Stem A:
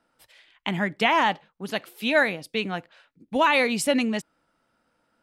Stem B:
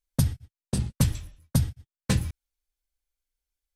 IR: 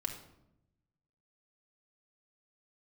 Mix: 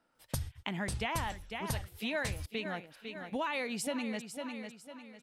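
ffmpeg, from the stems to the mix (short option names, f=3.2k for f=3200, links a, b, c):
-filter_complex "[0:a]volume=-5dB,asplit=2[a][b];[b]volume=-13dB[c];[1:a]equalizer=f=210:t=o:w=1.8:g=-13,adelay=150,volume=1.5dB[d];[c]aecho=0:1:500|1000|1500|2000|2500:1|0.33|0.109|0.0359|0.0119[e];[a][d][e]amix=inputs=3:normalize=0,acompressor=threshold=-35dB:ratio=3"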